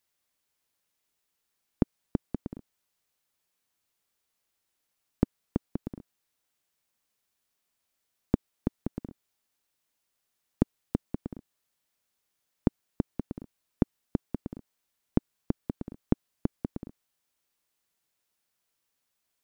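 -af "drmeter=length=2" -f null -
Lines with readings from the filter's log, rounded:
Channel 1: DR: 25.5
Overall DR: 25.5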